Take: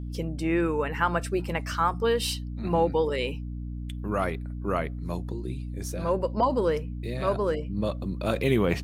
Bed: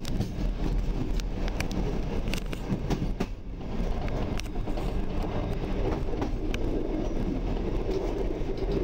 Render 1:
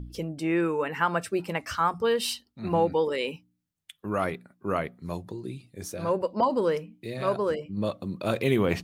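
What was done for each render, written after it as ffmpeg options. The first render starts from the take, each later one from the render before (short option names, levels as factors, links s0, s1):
-af "bandreject=f=60:t=h:w=4,bandreject=f=120:t=h:w=4,bandreject=f=180:t=h:w=4,bandreject=f=240:t=h:w=4,bandreject=f=300:t=h:w=4"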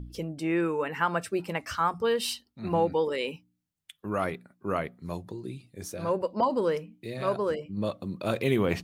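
-af "volume=0.841"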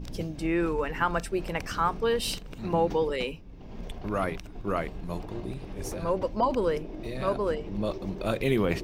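-filter_complex "[1:a]volume=0.335[s0];[0:a][s0]amix=inputs=2:normalize=0"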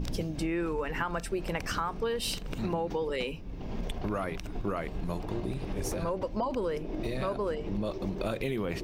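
-filter_complex "[0:a]asplit=2[s0][s1];[s1]alimiter=limit=0.106:level=0:latency=1:release=21,volume=1.12[s2];[s0][s2]amix=inputs=2:normalize=0,acompressor=threshold=0.0355:ratio=6"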